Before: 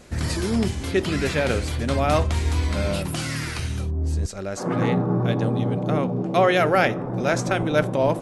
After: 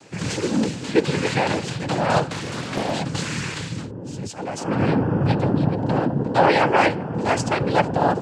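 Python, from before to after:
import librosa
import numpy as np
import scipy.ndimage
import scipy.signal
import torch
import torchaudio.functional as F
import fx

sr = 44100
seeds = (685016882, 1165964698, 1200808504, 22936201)

y = fx.noise_vocoder(x, sr, seeds[0], bands=8)
y = fx.doppler_dist(y, sr, depth_ms=0.67, at=(2.31, 2.91))
y = F.gain(torch.from_numpy(y), 2.0).numpy()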